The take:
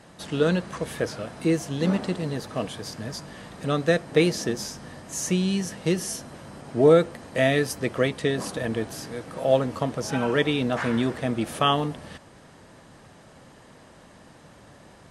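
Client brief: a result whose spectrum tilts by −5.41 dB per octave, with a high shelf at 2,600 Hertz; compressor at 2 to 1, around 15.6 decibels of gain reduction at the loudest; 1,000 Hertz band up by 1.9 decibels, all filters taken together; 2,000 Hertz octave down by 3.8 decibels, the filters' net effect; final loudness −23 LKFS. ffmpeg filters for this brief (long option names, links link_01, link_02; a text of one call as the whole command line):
ffmpeg -i in.wav -af "equalizer=frequency=1000:width_type=o:gain=4.5,equalizer=frequency=2000:width_type=o:gain=-4.5,highshelf=frequency=2600:gain=-3.5,acompressor=threshold=-41dB:ratio=2,volume=14.5dB" out.wav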